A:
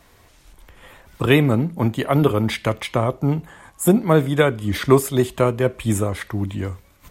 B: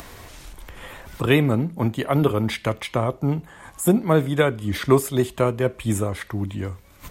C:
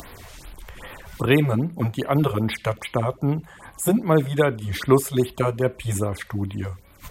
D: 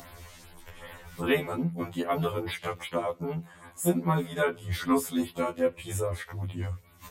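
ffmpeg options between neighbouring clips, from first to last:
-af "acompressor=mode=upward:threshold=-26dB:ratio=2.5,volume=-2.5dB"
-af "afftfilt=real='re*(1-between(b*sr/1024,240*pow(7500/240,0.5+0.5*sin(2*PI*2.5*pts/sr))/1.41,240*pow(7500/240,0.5+0.5*sin(2*PI*2.5*pts/sr))*1.41))':imag='im*(1-between(b*sr/1024,240*pow(7500/240,0.5+0.5*sin(2*PI*2.5*pts/sr))/1.41,240*pow(7500/240,0.5+0.5*sin(2*PI*2.5*pts/sr))*1.41))':win_size=1024:overlap=0.75"
-af "afftfilt=real='re*2*eq(mod(b,4),0)':imag='im*2*eq(mod(b,4),0)':win_size=2048:overlap=0.75,volume=-3dB"

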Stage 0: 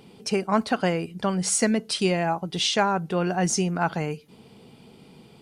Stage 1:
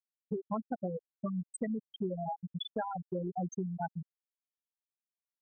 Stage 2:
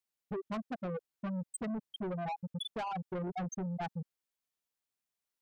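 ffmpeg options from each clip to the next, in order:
-af "afftfilt=real='re*gte(hypot(re,im),0.398)':imag='im*gte(hypot(re,im),0.398)':win_size=1024:overlap=0.75,acompressor=threshold=-36dB:ratio=3"
-af "asoftclip=type=tanh:threshold=-39dB,volume=5dB"

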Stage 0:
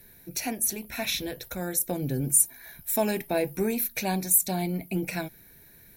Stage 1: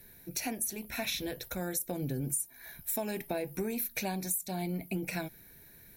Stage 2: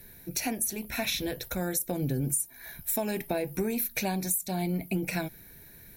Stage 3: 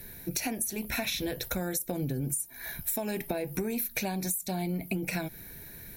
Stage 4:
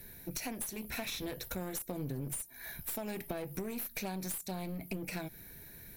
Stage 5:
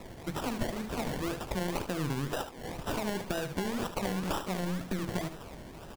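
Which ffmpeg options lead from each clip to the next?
-af "acompressor=threshold=-28dB:ratio=12,volume=-2dB"
-af "lowshelf=f=150:g=3,volume=4dB"
-af "acompressor=threshold=-34dB:ratio=5,volume=5dB"
-af "aeval=exprs='clip(val(0),-1,0.0188)':c=same,volume=-5.5dB"
-af "acrusher=samples=28:mix=1:aa=0.000001:lfo=1:lforange=16.8:lforate=2,aecho=1:1:74:0.316,volume=5.5dB"

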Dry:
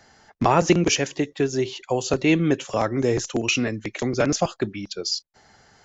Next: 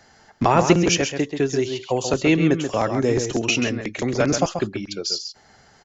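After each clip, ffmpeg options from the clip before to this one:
-filter_complex "[0:a]asplit=2[a][b];[b]adelay=134.1,volume=-7dB,highshelf=f=4k:g=-3.02[c];[a][c]amix=inputs=2:normalize=0,volume=1dB"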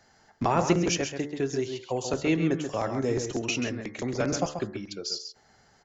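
-af "equalizer=f=2.9k:w=1.5:g=-2.5,bandreject=f=73.65:t=h:w=4,bandreject=f=147.3:t=h:w=4,bandreject=f=220.95:t=h:w=4,bandreject=f=294.6:t=h:w=4,bandreject=f=368.25:t=h:w=4,bandreject=f=441.9:t=h:w=4,bandreject=f=515.55:t=h:w=4,bandreject=f=589.2:t=h:w=4,bandreject=f=662.85:t=h:w=4,bandreject=f=736.5:t=h:w=4,bandreject=f=810.15:t=h:w=4,bandreject=f=883.8:t=h:w=4,bandreject=f=957.45:t=h:w=4,bandreject=f=1.0311k:t=h:w=4,bandreject=f=1.10475k:t=h:w=4,bandreject=f=1.1784k:t=h:w=4,bandreject=f=1.25205k:t=h:w=4,bandreject=f=1.3257k:t=h:w=4,bandreject=f=1.39935k:t=h:w=4,bandreject=f=1.473k:t=h:w=4,bandreject=f=1.54665k:t=h:w=4,bandreject=f=1.6203k:t=h:w=4,bandreject=f=1.69395k:t=h:w=4,bandreject=f=1.7676k:t=h:w=4,bandreject=f=1.84125k:t=h:w=4,bandreject=f=1.9149k:t=h:w=4,bandreject=f=1.98855k:t=h:w=4,bandreject=f=2.0622k:t=h:w=4,bandreject=f=2.13585k:t=h:w=4,volume=-7dB"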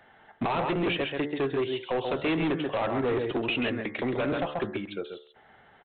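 -af "lowshelf=f=230:g=-9,alimiter=limit=-19.5dB:level=0:latency=1:release=162,aresample=8000,asoftclip=type=hard:threshold=-30dB,aresample=44100,volume=6.5dB"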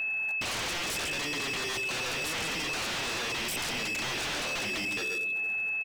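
-af "aecho=1:1:226|452|678|904:0.1|0.052|0.027|0.0141,aeval=exprs='val(0)+0.0251*sin(2*PI*2600*n/s)':c=same,aeval=exprs='0.0266*(abs(mod(val(0)/0.0266+3,4)-2)-1)':c=same,volume=3.5dB"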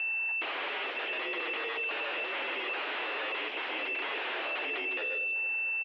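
-af "highpass=f=250:t=q:w=0.5412,highpass=f=250:t=q:w=1.307,lowpass=f=3k:t=q:w=0.5176,lowpass=f=3k:t=q:w=0.7071,lowpass=f=3k:t=q:w=1.932,afreqshift=69"

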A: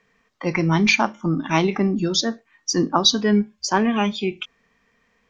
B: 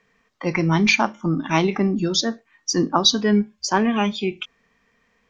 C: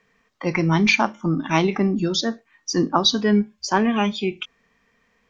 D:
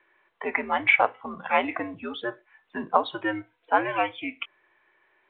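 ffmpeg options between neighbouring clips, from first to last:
-af anull
-filter_complex "[0:a]acrossover=split=5100[a][b];[b]acompressor=threshold=-31dB:ratio=4:attack=1:release=60[c];[a][c]amix=inputs=2:normalize=0"
-af "highpass=f=500:t=q:w=0.5412,highpass=f=500:t=q:w=1.307,lowpass=f=2.9k:t=q:w=0.5176,lowpass=f=2.9k:t=q:w=0.7071,lowpass=f=2.9k:t=q:w=1.932,afreqshift=-100" -ar 8000 -c:a pcm_mulaw

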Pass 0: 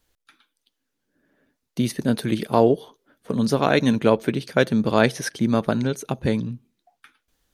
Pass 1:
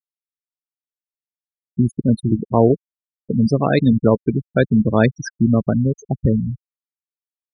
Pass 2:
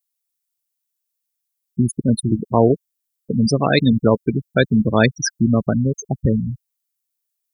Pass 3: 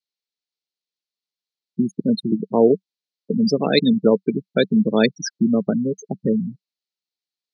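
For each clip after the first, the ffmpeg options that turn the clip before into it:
-af "crystalizer=i=2.5:c=0,afftfilt=real='re*gte(hypot(re,im),0.224)':imag='im*gte(hypot(re,im),0.224)':win_size=1024:overlap=0.75,aemphasis=mode=reproduction:type=bsi"
-af "crystalizer=i=5.5:c=0,volume=-1dB"
-af "highpass=f=180:w=0.5412,highpass=f=180:w=1.3066,equalizer=f=190:t=q:w=4:g=6,equalizer=f=440:t=q:w=4:g=5,equalizer=f=690:t=q:w=4:g=-3,equalizer=f=1.1k:t=q:w=4:g=-8,equalizer=f=1.6k:t=q:w=4:g=-5,equalizer=f=4.2k:t=q:w=4:g=7,lowpass=f=5.2k:w=0.5412,lowpass=f=5.2k:w=1.3066,volume=-2dB"

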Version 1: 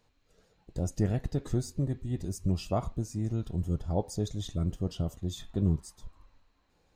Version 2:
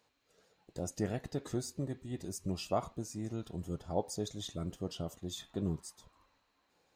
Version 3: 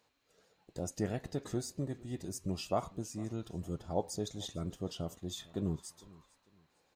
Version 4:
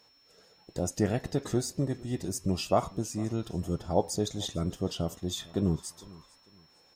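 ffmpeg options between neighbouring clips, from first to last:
-af "highpass=f=380:p=1"
-af "aecho=1:1:452|904:0.075|0.0225"
-af "aeval=exprs='val(0)+0.000355*sin(2*PI*5400*n/s)':c=same,volume=7.5dB"

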